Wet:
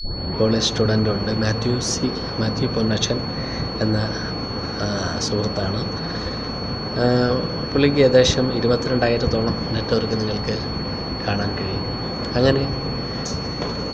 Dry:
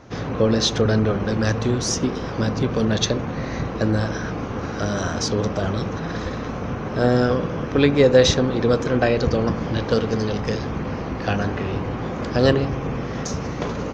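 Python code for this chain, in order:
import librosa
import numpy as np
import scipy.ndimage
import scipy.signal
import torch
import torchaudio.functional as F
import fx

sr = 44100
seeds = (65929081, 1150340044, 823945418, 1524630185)

y = fx.tape_start_head(x, sr, length_s=0.42)
y = y + 10.0 ** (-31.0 / 20.0) * np.sin(2.0 * np.pi * 4400.0 * np.arange(len(y)) / sr)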